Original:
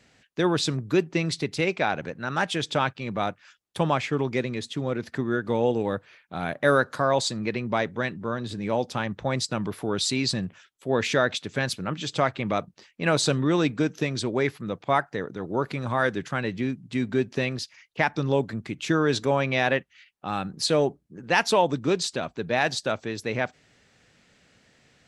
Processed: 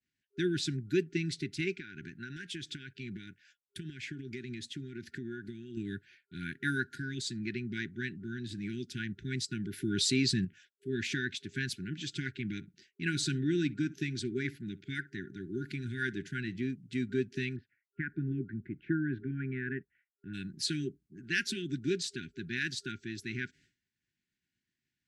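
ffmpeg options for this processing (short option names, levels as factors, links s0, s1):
-filter_complex "[0:a]asettb=1/sr,asplit=3[s0][s1][s2];[s0]atrim=end=1.734[s3];[s1]atrim=start=1.73:end=5.77,asetpts=PTS-STARTPTS,afade=t=in:d=0.004:c=qsin,afade=t=out:st=4.036:d=0.004:c=qsin,acompressor=threshold=0.0398:ratio=10:attack=3.2:release=140:knee=1:detection=peak[s4];[s2]atrim=start=5.766[s5];[s3][s4]acrossfade=d=0.004:c1=hsin:c2=qsin[s6];[s6][s5]acrossfade=d=0.004:c1=qsin:c2=hsin,asettb=1/sr,asplit=3[s7][s8][s9];[s7]atrim=end=9.734[s10];[s8]atrim=start=9.73:end=10.45,asetpts=PTS-STARTPTS,afade=t=in:d=0.004:c=qsin,afade=t=out:st=0.716:d=0.004:c=qsin,acontrast=35[s11];[s9]atrim=start=10.446[s12];[s10][s11]acrossfade=d=0.004:c1=hsin:c2=qsin[s13];[s13][s12]acrossfade=d=0.004:c1=qsin:c2=hsin,asettb=1/sr,asplit=3[s14][s15][s16];[s14]atrim=end=12.554[s17];[s15]atrim=start=12.55:end=16.61,asetpts=PTS-STARTPTS,afade=t=in:d=0.004:c=qsin,afade=t=out:st=4.056:d=0.004:c=qsin,asplit=2[s18][s19];[s19]adelay=63,lowpass=f=960:p=1,volume=0.141,asplit=2[s20][s21];[s21]adelay=63,lowpass=f=960:p=1,volume=0.17[s22];[s18][s20][s22]amix=inputs=3:normalize=0,atrim=end_sample=179046[s23];[s16]atrim=start=16.606[s24];[s17][s23]acrossfade=d=0.004:c1=hsin:c2=qsin[s25];[s25][s24]acrossfade=d=0.004:c1=qsin:c2=hsin,asplit=3[s26][s27][s28];[s26]afade=t=out:st=17.55:d=0.02[s29];[s27]lowpass=f=1600:w=0.5412,lowpass=f=1600:w=1.3066,afade=t=in:st=17.55:d=0.02,afade=t=out:st=20.33:d=0.02[s30];[s28]afade=t=in:st=20.33:d=0.02[s31];[s29][s30][s31]amix=inputs=3:normalize=0,agate=range=0.0224:threshold=0.00447:ratio=3:detection=peak,afftfilt=real='re*(1-between(b*sr/4096,400,1400))':imag='im*(1-between(b*sr/4096,400,1400))':win_size=4096:overlap=0.75,adynamicequalizer=threshold=0.0112:dfrequency=1700:dqfactor=0.7:tfrequency=1700:tqfactor=0.7:attack=5:release=100:ratio=0.375:range=2:mode=cutabove:tftype=highshelf,volume=0.447"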